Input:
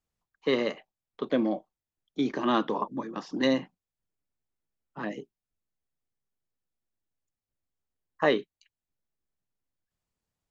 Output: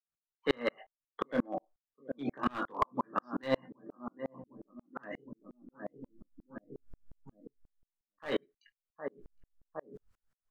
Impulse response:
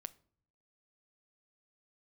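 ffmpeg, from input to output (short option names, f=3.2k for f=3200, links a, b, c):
-filter_complex "[0:a]equalizer=f=1.4k:w=1.7:g=11.5,bandreject=f=360:w=12,asplit=2[a][b];[b]adelay=762,lowpass=f=820:p=1,volume=-14dB,asplit=2[c][d];[d]adelay=762,lowpass=f=820:p=1,volume=0.46,asplit=2[e][f];[f]adelay=762,lowpass=f=820:p=1,volume=0.46,asplit=2[g][h];[h]adelay=762,lowpass=f=820:p=1,volume=0.46[i];[a][c][e][g][i]amix=inputs=5:normalize=0,areverse,acompressor=mode=upward:threshold=-33dB:ratio=2.5,areverse,asplit=2[j][k];[k]adelay=21,volume=-7.5dB[l];[j][l]amix=inputs=2:normalize=0,asplit=2[m][n];[n]acompressor=threshold=-37dB:ratio=16,volume=3dB[o];[m][o]amix=inputs=2:normalize=0[p];[1:a]atrim=start_sample=2205,atrim=end_sample=3528,asetrate=38808,aresample=44100[q];[p][q]afir=irnorm=-1:irlink=0,adynamicequalizer=threshold=0.00708:dfrequency=660:dqfactor=1.7:tfrequency=660:tqfactor=1.7:attack=5:release=100:ratio=0.375:range=1.5:mode=boostabove:tftype=bell,afftdn=nr=21:nf=-41,aeval=exprs='clip(val(0),-1,0.0944)':c=same,aeval=exprs='val(0)*pow(10,-40*if(lt(mod(-5.6*n/s,1),2*abs(-5.6)/1000),1-mod(-5.6*n/s,1)/(2*abs(-5.6)/1000),(mod(-5.6*n/s,1)-2*abs(-5.6)/1000)/(1-2*abs(-5.6)/1000))/20)':c=same,volume=2dB"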